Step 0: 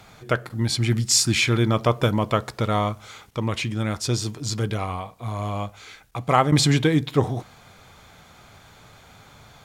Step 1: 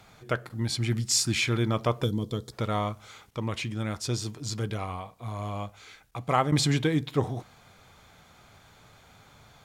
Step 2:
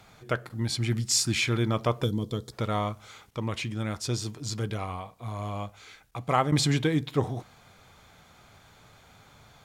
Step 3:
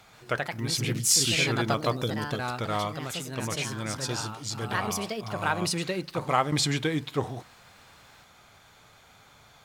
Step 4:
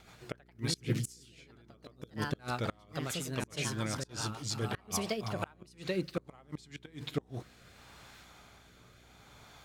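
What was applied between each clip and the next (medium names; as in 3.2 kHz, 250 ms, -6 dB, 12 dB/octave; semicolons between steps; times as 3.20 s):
time-frequency box 2.04–2.53 s, 510–3100 Hz -16 dB; trim -6 dB
no audible change
bass shelf 440 Hz -6.5 dB; ever faster or slower copies 132 ms, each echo +3 st, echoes 2; trim +1.5 dB
inverted gate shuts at -17 dBFS, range -31 dB; rotary cabinet horn 7 Hz, later 0.7 Hz, at 5.06 s; mains buzz 60 Hz, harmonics 7, -64 dBFS -4 dB/octave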